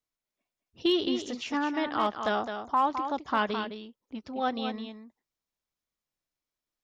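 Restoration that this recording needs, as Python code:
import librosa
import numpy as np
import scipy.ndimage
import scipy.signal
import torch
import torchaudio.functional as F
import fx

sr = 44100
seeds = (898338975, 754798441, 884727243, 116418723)

y = fx.fix_declip(x, sr, threshold_db=-17.0)
y = fx.fix_echo_inverse(y, sr, delay_ms=211, level_db=-8.0)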